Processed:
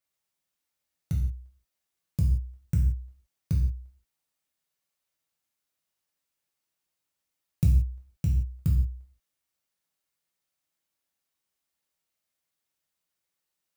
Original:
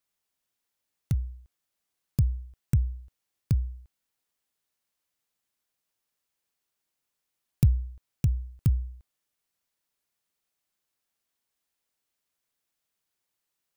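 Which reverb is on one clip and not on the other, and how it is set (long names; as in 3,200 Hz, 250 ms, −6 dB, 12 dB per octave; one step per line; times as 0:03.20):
reverb whose tail is shaped and stops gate 200 ms falling, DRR −2.5 dB
level −5.5 dB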